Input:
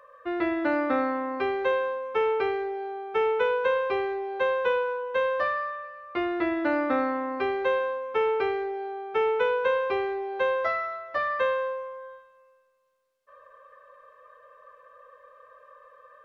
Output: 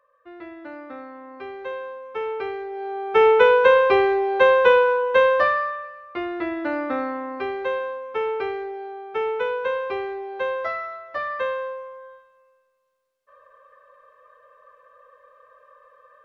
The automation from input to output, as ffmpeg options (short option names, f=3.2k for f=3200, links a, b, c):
-af "volume=10dB,afade=t=in:st=1.09:d=1.6:silence=0.281838,afade=t=in:st=2.69:d=0.57:silence=0.266073,afade=t=out:st=5.07:d=1.07:silence=0.298538"